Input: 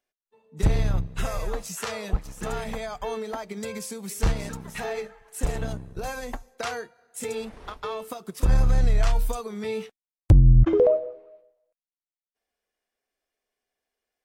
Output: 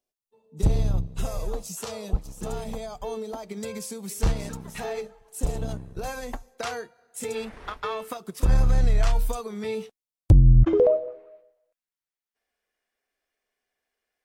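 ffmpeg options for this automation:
-af "asetnsamples=n=441:p=0,asendcmd='3.43 equalizer g -4.5;5.01 equalizer g -11.5;5.69 equalizer g -2;7.35 equalizer g 6;8.17 equalizer g -1;9.75 equalizer g -8.5;10.5 equalizer g -2;11.08 equalizer g 5',equalizer=f=1.8k:t=o:w=1.3:g=-13"

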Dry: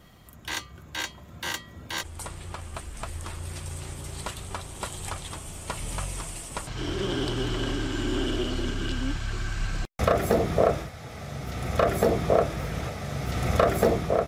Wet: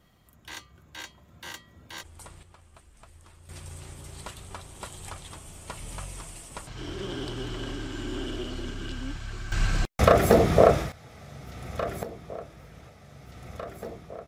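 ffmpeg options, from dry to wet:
-af "asetnsamples=n=441:p=0,asendcmd='2.43 volume volume -17dB;3.49 volume volume -6dB;9.52 volume volume 4.5dB;10.92 volume volume -8dB;12.03 volume volume -17dB',volume=-9dB"

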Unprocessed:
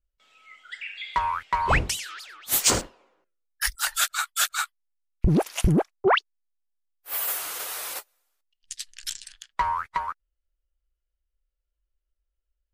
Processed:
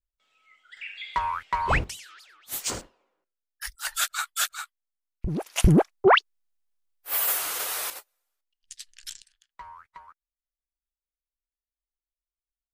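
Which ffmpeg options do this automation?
-af "asetnsamples=n=441:p=0,asendcmd='0.77 volume volume -2dB;1.84 volume volume -10dB;3.85 volume volume -2.5dB;4.54 volume volume -9dB;5.56 volume volume 3dB;7.9 volume volume -6.5dB;9.22 volume volume -19dB',volume=-9.5dB"

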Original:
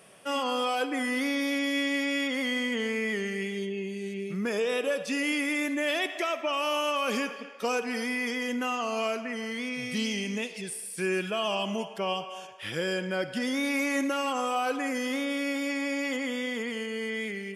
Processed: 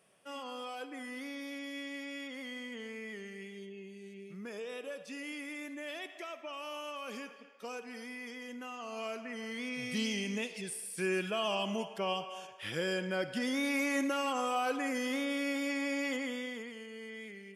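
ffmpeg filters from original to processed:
-af "volume=-4dB,afade=t=in:st=8.73:d=1.21:silence=0.316228,afade=t=out:st=16.09:d=0.64:silence=0.354813"

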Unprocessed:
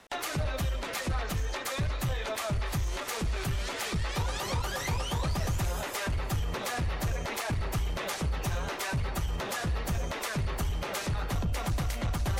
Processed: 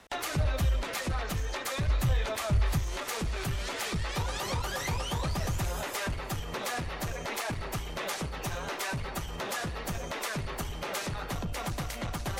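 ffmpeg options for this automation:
-af "asetnsamples=n=441:p=0,asendcmd='0.82 equalizer g -1.5;1.88 equalizer g 7.5;2.78 equalizer g -2.5;6.13 equalizer g -9.5',equalizer=f=62:t=o:w=1.9:g=5"

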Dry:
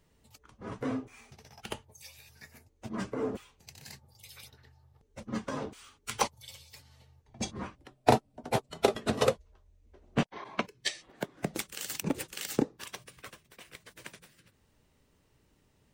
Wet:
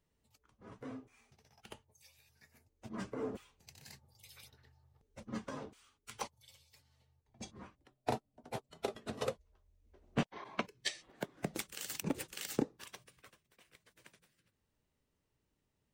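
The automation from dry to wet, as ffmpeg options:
-af "volume=1.5dB,afade=t=in:st=2.46:d=0.54:silence=0.473151,afade=t=out:st=5.41:d=0.4:silence=0.473151,afade=t=in:st=9.09:d=1.17:silence=0.398107,afade=t=out:st=12.51:d=0.82:silence=0.354813"

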